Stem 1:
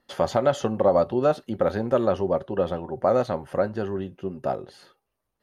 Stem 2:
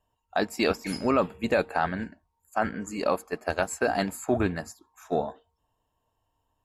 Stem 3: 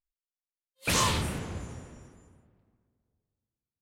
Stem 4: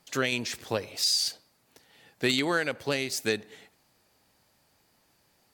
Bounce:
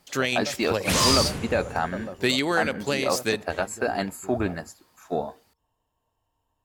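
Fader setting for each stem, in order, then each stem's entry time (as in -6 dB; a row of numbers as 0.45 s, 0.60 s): -15.5 dB, -0.5 dB, +2.5 dB, +2.5 dB; 0.00 s, 0.00 s, 0.00 s, 0.00 s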